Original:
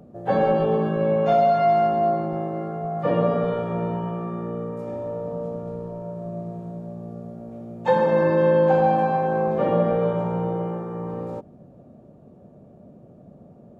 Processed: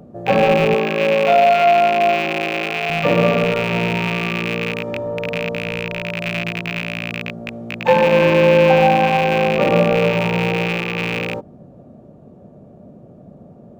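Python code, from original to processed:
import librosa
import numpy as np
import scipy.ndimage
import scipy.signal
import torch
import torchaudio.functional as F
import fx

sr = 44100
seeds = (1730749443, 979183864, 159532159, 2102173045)

y = fx.rattle_buzz(x, sr, strikes_db=-33.0, level_db=-16.0)
y = fx.highpass(y, sr, hz=270.0, slope=12, at=(0.74, 2.9))
y = np.interp(np.arange(len(y)), np.arange(len(y))[::2], y[::2])
y = y * librosa.db_to_amplitude(5.5)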